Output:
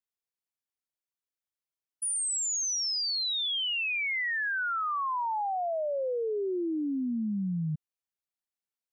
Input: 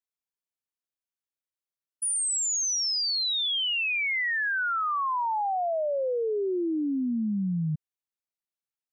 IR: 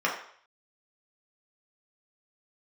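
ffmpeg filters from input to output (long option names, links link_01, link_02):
-filter_complex "[0:a]asettb=1/sr,asplit=3[link_01][link_02][link_03];[link_01]atrim=end=5.454[link_04];[link_02]atrim=start=5.45:end=5.96,asetpts=PTS-STARTPTS,afade=type=in:duration=0.004:curve=qsin,afade=type=out:start_time=0.506:duration=0.004:curve=qsin,highshelf=frequency=4000:width_type=q:width=1.5:gain=7.5[link_05];[link_03]atrim=start=5.956[link_06];[link_04][link_05]acrossfade=duration=0.004:curve1=hsin:curve2=qsin[link_07];[link_07][link_06]acrossfade=duration=0.004:curve1=qsin:curve2=hsin,volume=-3dB"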